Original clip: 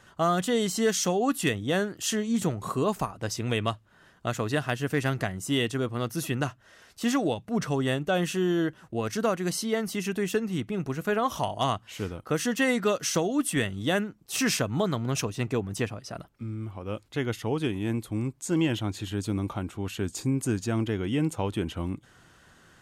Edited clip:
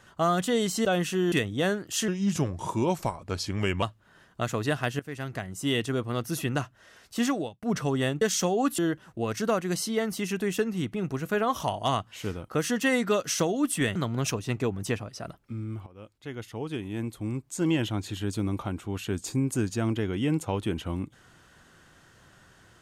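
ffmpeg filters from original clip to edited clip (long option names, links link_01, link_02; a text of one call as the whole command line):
ffmpeg -i in.wav -filter_complex "[0:a]asplit=11[link_01][link_02][link_03][link_04][link_05][link_06][link_07][link_08][link_09][link_10][link_11];[link_01]atrim=end=0.852[link_12];[link_02]atrim=start=8.068:end=8.542[link_13];[link_03]atrim=start=1.418:end=2.184[link_14];[link_04]atrim=start=2.18:end=3.68,asetpts=PTS-STARTPTS,asetrate=37926,aresample=44100[link_15];[link_05]atrim=start=3.676:end=4.85,asetpts=PTS-STARTPTS,afade=type=out:start_time=1.17:duration=0.004:curve=hsin:silence=0.158489[link_16];[link_06]atrim=start=4.85:end=7.48,asetpts=PTS-STARTPTS,afade=type=in:duration=0.81:silence=0.158489,afade=type=out:start_time=2.26:duration=0.37[link_17];[link_07]atrim=start=7.48:end=8.072,asetpts=PTS-STARTPTS,afade=type=in:duration=0.004:curve=hsin[link_18];[link_08]atrim=start=0.848:end=1.422[link_19];[link_09]atrim=start=8.538:end=13.712[link_20];[link_10]atrim=start=14.858:end=16.77,asetpts=PTS-STARTPTS,afade=type=out:start_time=1.908:duration=0.004:curve=hsin:silence=0.16788[link_21];[link_11]atrim=start=16.77,asetpts=PTS-STARTPTS,afade=type=in:duration=1.93:silence=0.16788[link_22];[link_12][link_13]acrossfade=duration=0.004:curve1=hsin:curve2=hsin[link_23];[link_23][link_14]acrossfade=duration=0.004:curve1=hsin:curve2=hsin[link_24];[link_24][link_15]acrossfade=duration=0.004:curve1=hsin:curve2=hsin[link_25];[link_16][link_17][link_18]concat=n=3:v=0:a=1[link_26];[link_25][link_26]acrossfade=duration=0.004:curve1=hsin:curve2=hsin[link_27];[link_27][link_19]acrossfade=duration=0.004:curve1=hsin:curve2=hsin[link_28];[link_28][link_20]acrossfade=duration=0.004:curve1=hsin:curve2=hsin[link_29];[link_21][link_22]concat=n=2:v=0:a=1[link_30];[link_29][link_30]acrossfade=duration=0.004:curve1=hsin:curve2=hsin" out.wav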